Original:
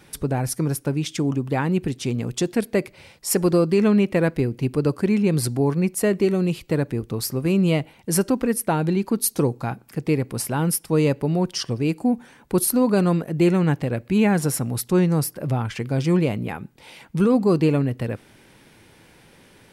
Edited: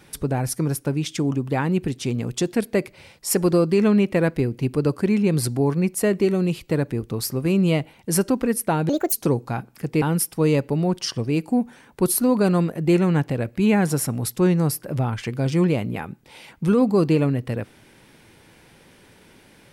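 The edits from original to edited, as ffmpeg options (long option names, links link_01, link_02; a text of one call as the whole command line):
ffmpeg -i in.wav -filter_complex "[0:a]asplit=4[link_01][link_02][link_03][link_04];[link_01]atrim=end=8.894[link_05];[link_02]atrim=start=8.89:end=9.26,asetpts=PTS-STARTPTS,asetrate=68796,aresample=44100[link_06];[link_03]atrim=start=9.256:end=10.152[link_07];[link_04]atrim=start=10.538[link_08];[link_05][link_06]acrossfade=duration=0.004:curve1=hsin:curve2=hsin[link_09];[link_09][link_07]acrossfade=duration=0.004:curve1=hsin:curve2=hsin[link_10];[link_10][link_08]acrossfade=duration=0.004:curve1=hsin:curve2=hsin" out.wav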